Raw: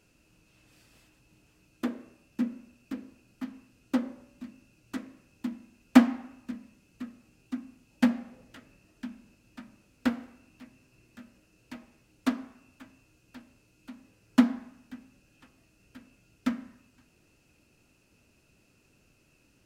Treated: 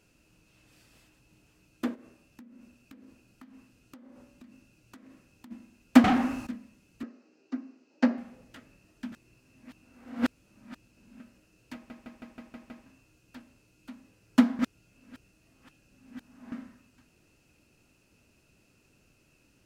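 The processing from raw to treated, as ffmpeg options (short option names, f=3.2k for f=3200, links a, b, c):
-filter_complex "[0:a]asplit=3[a][b][c];[a]afade=t=out:st=1.94:d=0.02[d];[b]acompressor=threshold=-47dB:ratio=16:attack=3.2:release=140:knee=1:detection=peak,afade=t=in:st=1.94:d=0.02,afade=t=out:st=5.5:d=0.02[e];[c]afade=t=in:st=5.5:d=0.02[f];[d][e][f]amix=inputs=3:normalize=0,asettb=1/sr,asplit=3[g][h][i];[g]atrim=end=6.044[j];[h]atrim=start=6.04:end=6.47,asetpts=PTS-STARTPTS,afade=t=in:d=0.004:c=qsin,afade=t=out:st=0.426:d=0.004:c=qsin,aeval=exprs='0.106*sin(PI/2*5.01*val(0)/0.106)':c=same[k];[i]atrim=start=6.466[l];[j][k]acrossfade=d=0.004:c1=hsin:c2=qsin[m];[m][l]acrossfade=d=0.004:c1=qsin:c2=hsin,asettb=1/sr,asplit=3[n][o][p];[n]atrim=end=7.034[q];[o]atrim=start=7.03:end=8.18,asetpts=PTS-STARTPTS,afade=t=in:d=0.004:c=qsin,afade=t=out:st=1.146:d=0.004:c=qsin,highpass=f=250:w=0.5412,highpass=f=250:w=1.3066,equalizer=f=280:t=q:w=4:g=4,equalizer=f=410:t=q:w=4:g=7,equalizer=f=590:t=q:w=4:g=4,equalizer=f=2.4k:t=q:w=4:g=-3,equalizer=f=3.4k:t=q:w=4:g=-9,lowpass=f=5.8k:w=0.5412,lowpass=f=5.8k:w=1.3066[r];[p]atrim=start=8.176[s];[q][r]acrossfade=d=0.004:c1=hsin:c2=qsin[t];[t][s]acrossfade=d=0.004:c1=qsin:c2=hsin,asplit=12[u][v][w][x][y][z][aa][ab][ac][ad][ae][af];[u]atrim=end=9.122[ag];[v]atrim=start=9.118:end=11.202,asetpts=PTS-STARTPTS,areverse[ah];[w]atrim=start=11.198:end=11.902[ai];[x]atrim=start=11.738:end=11.902[aj];[y]atrim=start=11.738:end=11.902[ak];[z]atrim=start=11.738:end=11.902[al];[aa]atrim=start=11.738:end=11.902[am];[ab]atrim=start=11.738:end=11.902[an];[ac]atrim=start=11.738:end=11.902[ao];[ad]atrim=start=12.858:end=14.592[ap];[ae]atrim=start=14.588:end=16.522,asetpts=PTS-STARTPTS,areverse[aq];[af]atrim=start=16.518[ar];[ag][ah]acrossfade=d=0.004:c1=hsin:c2=hsin[as];[as][ai]acrossfade=d=0.004:c1=hsin:c2=hsin[at];[at][aj]acrossfade=d=0.004:c1=hsin:c2=hsin[au];[au][ak]acrossfade=d=0.004:c1=hsin:c2=hsin[av];[av][al]acrossfade=d=0.004:c1=hsin:c2=hsin[aw];[aw][am]acrossfade=d=0.004:c1=hsin:c2=hsin[ax];[ax][an]acrossfade=d=0.004:c1=hsin:c2=hsin[ay];[ay][ao]acrossfade=d=0.004:c1=hsin:c2=hsin[az];[az][ap]acrossfade=d=0.004:c1=hsin:c2=hsin[ba];[ba][aq]acrossfade=d=0.004:c1=hsin:c2=hsin[bb];[bb][ar]acrossfade=d=0.004:c1=hsin:c2=hsin"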